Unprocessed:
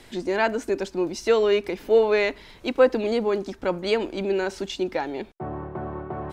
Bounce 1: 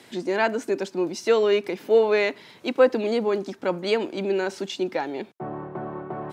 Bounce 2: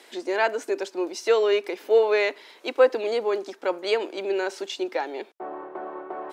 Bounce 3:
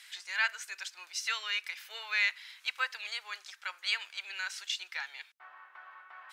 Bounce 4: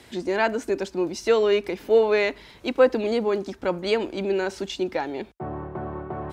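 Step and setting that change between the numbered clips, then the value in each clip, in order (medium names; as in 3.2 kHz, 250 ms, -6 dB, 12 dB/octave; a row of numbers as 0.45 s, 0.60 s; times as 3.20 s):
high-pass, cutoff frequency: 130 Hz, 350 Hz, 1.5 kHz, 42 Hz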